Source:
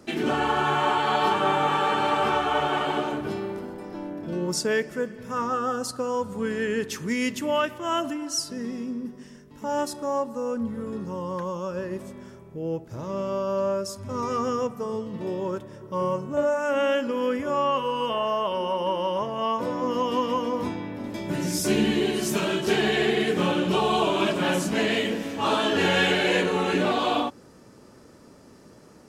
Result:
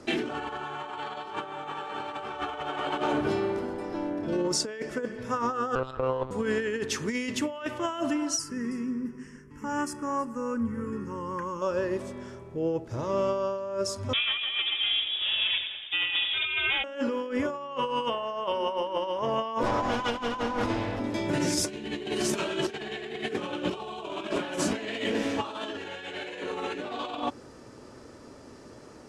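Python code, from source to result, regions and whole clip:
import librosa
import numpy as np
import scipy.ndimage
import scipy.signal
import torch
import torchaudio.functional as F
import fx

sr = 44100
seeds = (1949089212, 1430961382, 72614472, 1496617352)

y = fx.chain(x, sr, fx.peak_eq(hz=82.0, db=-13.0, octaves=2.2),
    fx.lpc_monotone(seeds[0], pitch_hz=130.0, order=10),
    fx.running_max(window=3), at=(5.75, 6.31))
y = fx.chain(y, sr, fx.fixed_phaser(hz=1600.0, stages=4),
    fx.echo_single(ms=321, db=-19.0), at=(8.39, 11.62))
y = fx.chain(y, sr, fx.lower_of_two(delay_ms=4.3),
    fx.echo_feedback(ms=92, feedback_pct=50, wet_db=-7.5),
    fx.freq_invert(carrier_hz=3600), at=(14.13, 16.84))
y = fx.chain(y, sr, fx.lower_of_two(delay_ms=8.9),
    fx.over_compress(threshold_db=-31.0, ratio=-0.5), at=(19.63, 21.0))
y = scipy.signal.sosfilt(scipy.signal.bessel(4, 8100.0, 'lowpass', norm='mag', fs=sr, output='sos'), y)
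y = fx.peak_eq(y, sr, hz=180.0, db=-10.5, octaves=0.37)
y = fx.over_compress(y, sr, threshold_db=-29.0, ratio=-0.5)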